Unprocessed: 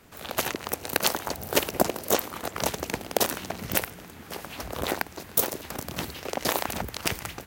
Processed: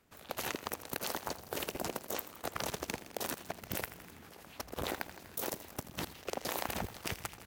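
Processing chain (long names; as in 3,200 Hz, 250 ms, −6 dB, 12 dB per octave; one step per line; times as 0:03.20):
output level in coarse steps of 17 dB
feedback echo at a low word length 82 ms, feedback 80%, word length 7 bits, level −13 dB
level −3 dB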